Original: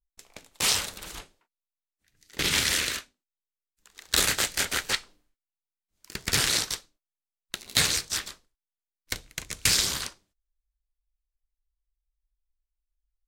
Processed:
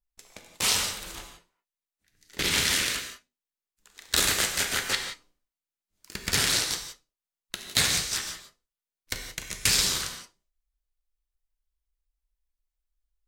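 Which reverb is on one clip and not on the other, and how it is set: non-linear reverb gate 0.2 s flat, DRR 4 dB; gain -1 dB

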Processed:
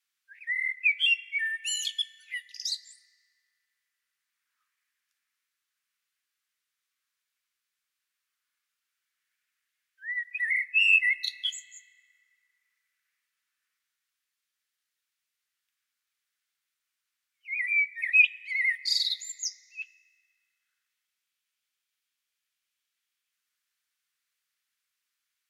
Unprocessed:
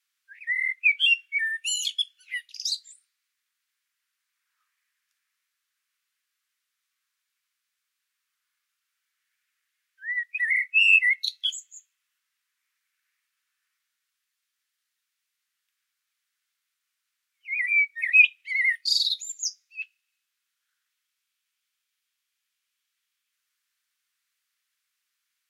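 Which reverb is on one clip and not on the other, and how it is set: FDN reverb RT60 3.9 s, high-frequency decay 0.35×, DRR 17.5 dB; gain -3.5 dB

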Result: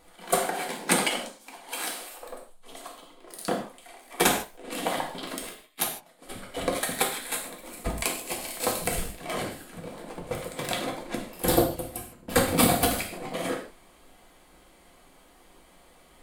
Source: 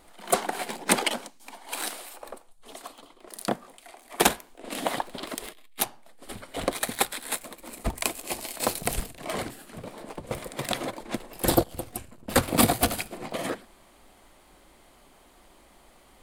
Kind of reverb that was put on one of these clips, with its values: non-linear reverb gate 0.18 s falling, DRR -1 dB; gain -3 dB

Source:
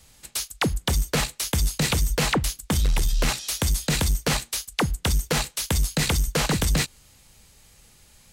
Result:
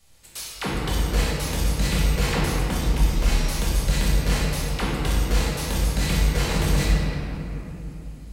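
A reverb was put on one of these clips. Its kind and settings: shoebox room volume 170 m³, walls hard, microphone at 1.2 m; gain -9.5 dB

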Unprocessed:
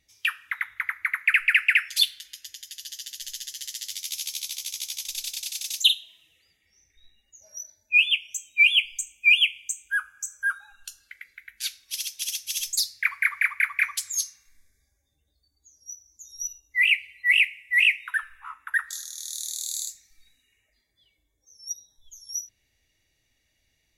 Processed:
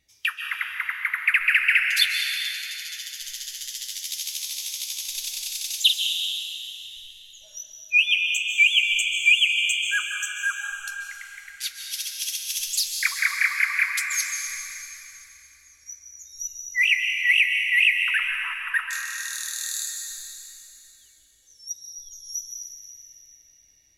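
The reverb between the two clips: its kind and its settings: plate-style reverb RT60 3 s, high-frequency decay 1×, pre-delay 0.12 s, DRR 2 dB

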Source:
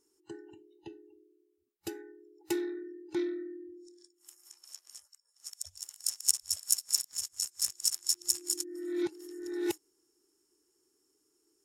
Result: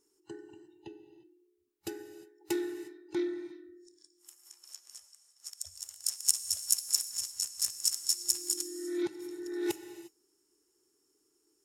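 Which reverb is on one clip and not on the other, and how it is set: non-linear reverb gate 0.38 s flat, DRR 10.5 dB

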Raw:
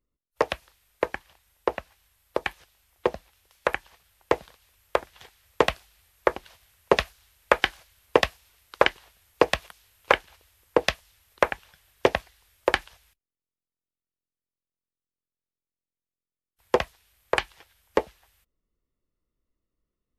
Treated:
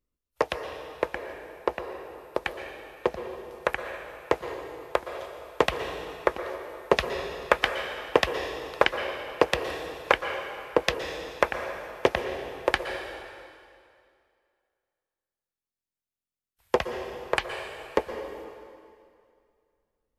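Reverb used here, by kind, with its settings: plate-style reverb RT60 2.3 s, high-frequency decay 0.9×, pre-delay 0.105 s, DRR 6 dB; gain -2 dB

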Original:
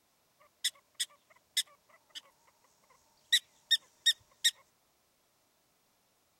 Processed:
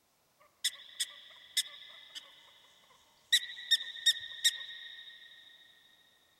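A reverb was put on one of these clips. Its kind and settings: spring tank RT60 3.8 s, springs 36/46 ms, chirp 70 ms, DRR 7.5 dB

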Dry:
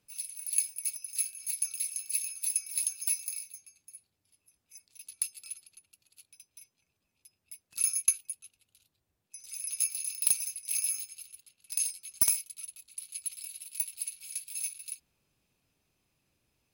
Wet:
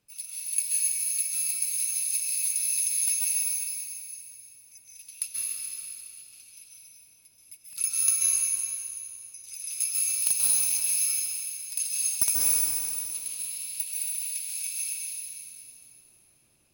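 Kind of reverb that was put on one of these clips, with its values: plate-style reverb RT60 2.7 s, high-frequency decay 0.95×, pre-delay 0.12 s, DRR -6 dB

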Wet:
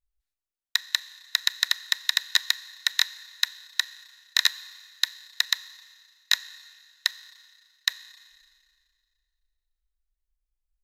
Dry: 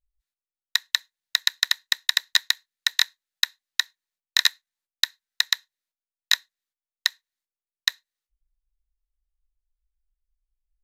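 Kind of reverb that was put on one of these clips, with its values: Schroeder reverb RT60 2 s, combs from 29 ms, DRR 16.5 dB; gain -2 dB

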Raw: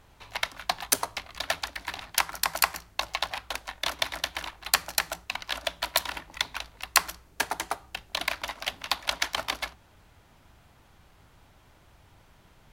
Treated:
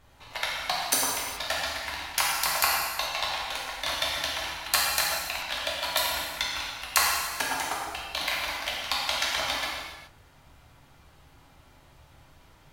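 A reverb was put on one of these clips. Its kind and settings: non-linear reverb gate 0.45 s falling, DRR -5 dB; gain -4 dB

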